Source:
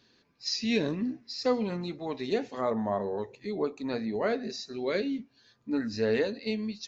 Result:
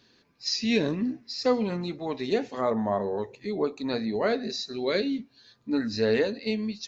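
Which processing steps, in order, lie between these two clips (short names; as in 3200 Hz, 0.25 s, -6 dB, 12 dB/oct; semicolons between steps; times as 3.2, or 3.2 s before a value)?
3.67–6.14 bell 4000 Hz +6.5 dB 0.32 oct; gain +3 dB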